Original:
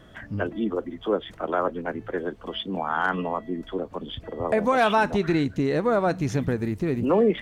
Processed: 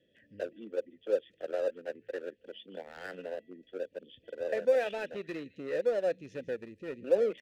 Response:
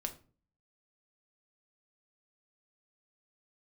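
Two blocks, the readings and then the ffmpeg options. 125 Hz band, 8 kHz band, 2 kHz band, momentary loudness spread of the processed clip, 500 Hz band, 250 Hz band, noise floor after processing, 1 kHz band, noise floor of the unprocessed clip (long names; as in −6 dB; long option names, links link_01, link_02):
−25.5 dB, can't be measured, −13.5 dB, 16 LU, −6.0 dB, −19.0 dB, −70 dBFS, −20.5 dB, −47 dBFS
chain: -filter_complex "[0:a]asplit=3[link_01][link_02][link_03];[link_01]bandpass=frequency=530:width_type=q:width=8,volume=0dB[link_04];[link_02]bandpass=frequency=1840:width_type=q:width=8,volume=-6dB[link_05];[link_03]bandpass=frequency=2480:width_type=q:width=8,volume=-9dB[link_06];[link_04][link_05][link_06]amix=inputs=3:normalize=0,acrossover=split=390|2600[link_07][link_08][link_09];[link_08]aeval=exprs='sgn(val(0))*max(abs(val(0))-0.00596,0)':channel_layout=same[link_10];[link_09]aecho=1:1:160:0.188[link_11];[link_07][link_10][link_11]amix=inputs=3:normalize=0,volume=1.5dB"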